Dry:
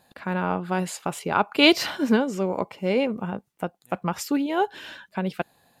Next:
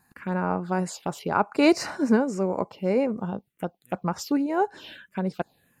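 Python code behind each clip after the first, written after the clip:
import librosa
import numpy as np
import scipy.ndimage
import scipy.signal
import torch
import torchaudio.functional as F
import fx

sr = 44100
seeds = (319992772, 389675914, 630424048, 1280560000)

y = fx.env_phaser(x, sr, low_hz=570.0, high_hz=3300.0, full_db=-23.0)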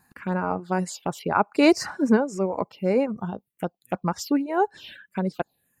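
y = fx.dereverb_blind(x, sr, rt60_s=0.95)
y = y * 10.0 ** (2.0 / 20.0)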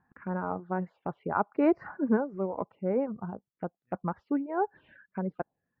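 y = scipy.signal.sosfilt(scipy.signal.butter(4, 1700.0, 'lowpass', fs=sr, output='sos'), x)
y = y * 10.0 ** (-6.5 / 20.0)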